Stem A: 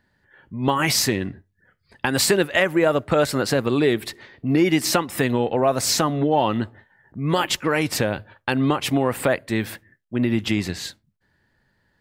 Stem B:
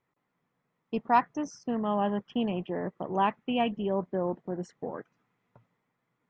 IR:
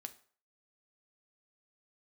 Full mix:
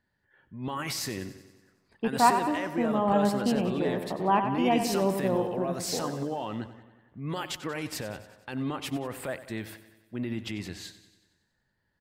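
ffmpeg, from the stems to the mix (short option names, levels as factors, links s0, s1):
-filter_complex "[0:a]alimiter=limit=0.224:level=0:latency=1:release=14,volume=0.282,asplit=2[s0][s1];[s1]volume=0.188[s2];[1:a]lowpass=2800,adelay=1100,volume=1.26,asplit=2[s3][s4];[s4]volume=0.422[s5];[s2][s5]amix=inputs=2:normalize=0,aecho=0:1:93|186|279|372|465|558|651|744|837:1|0.59|0.348|0.205|0.121|0.0715|0.0422|0.0249|0.0147[s6];[s0][s3][s6]amix=inputs=3:normalize=0"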